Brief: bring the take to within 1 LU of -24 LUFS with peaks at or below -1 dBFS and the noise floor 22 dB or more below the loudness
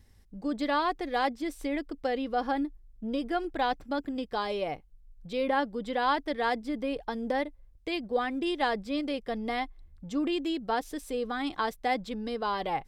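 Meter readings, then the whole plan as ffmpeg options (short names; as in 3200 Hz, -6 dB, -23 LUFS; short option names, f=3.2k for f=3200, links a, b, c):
loudness -31.5 LUFS; peak -14.0 dBFS; loudness target -24.0 LUFS
-> -af "volume=7.5dB"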